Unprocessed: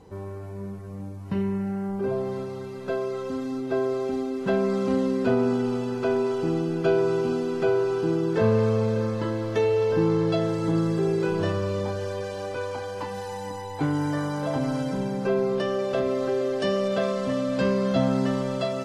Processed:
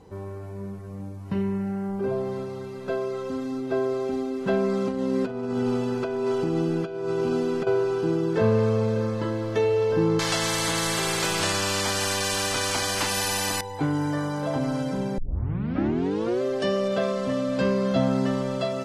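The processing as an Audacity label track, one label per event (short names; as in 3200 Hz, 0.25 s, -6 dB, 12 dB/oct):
4.880000	7.670000	negative-ratio compressor -25 dBFS, ratio -0.5
10.190000	13.610000	spectral compressor 4:1
15.180000	15.180000	tape start 1.24 s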